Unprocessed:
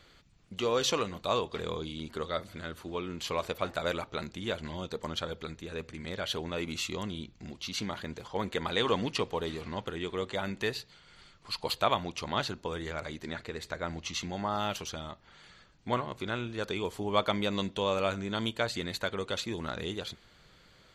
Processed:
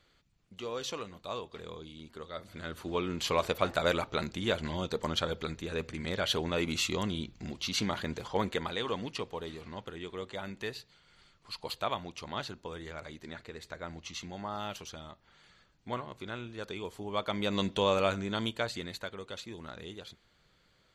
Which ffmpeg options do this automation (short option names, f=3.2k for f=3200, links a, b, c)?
-af "volume=12.5dB,afade=t=in:st=2.33:d=0.64:silence=0.237137,afade=t=out:st=8.32:d=0.46:silence=0.334965,afade=t=in:st=17.25:d=0.48:silence=0.354813,afade=t=out:st=17.73:d=1.42:silence=0.266073"